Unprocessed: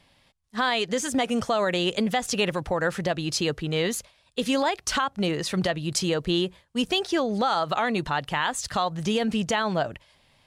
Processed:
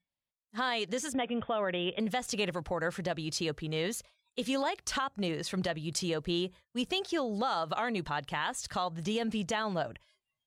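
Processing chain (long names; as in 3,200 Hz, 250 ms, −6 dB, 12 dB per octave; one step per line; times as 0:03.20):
noise reduction from a noise print of the clip's start 27 dB
0:01.13–0:02.00: Chebyshev low-pass filter 3,600 Hz, order 10
level −7.5 dB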